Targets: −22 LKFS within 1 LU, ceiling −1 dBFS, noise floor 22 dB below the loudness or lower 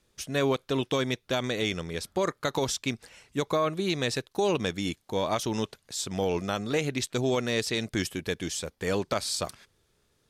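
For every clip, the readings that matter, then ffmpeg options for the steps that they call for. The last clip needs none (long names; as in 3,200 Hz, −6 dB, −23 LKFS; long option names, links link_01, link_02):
integrated loudness −29.5 LKFS; sample peak −14.0 dBFS; target loudness −22.0 LKFS
→ -af "volume=7.5dB"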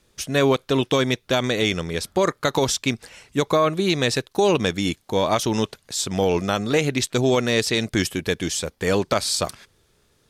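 integrated loudness −22.0 LKFS; sample peak −6.5 dBFS; background noise floor −64 dBFS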